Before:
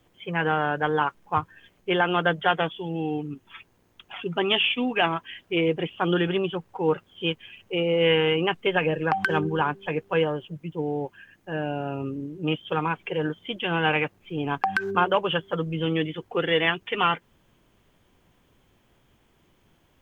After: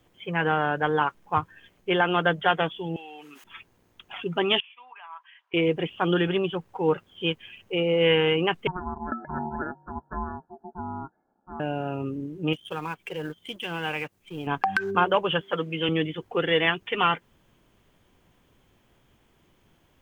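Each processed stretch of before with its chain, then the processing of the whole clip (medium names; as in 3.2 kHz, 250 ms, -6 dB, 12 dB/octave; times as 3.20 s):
2.96–3.44 s: high-pass 1.2 kHz + level flattener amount 70%
4.60–5.54 s: tilt EQ +4.5 dB/octave + compression 5:1, threshold -30 dBFS + ladder band-pass 1.1 kHz, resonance 65%
8.67–11.60 s: rippled Chebyshev low-pass 1.2 kHz, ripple 9 dB + ring modulator 540 Hz
12.53–14.47 s: companding laws mixed up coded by A + treble shelf 4 kHz +8 dB + compression 1.5:1, threshold -39 dBFS
15.41–15.89 s: high-pass 210 Hz + peaking EQ 2.4 kHz +8 dB 1.2 oct
whole clip: none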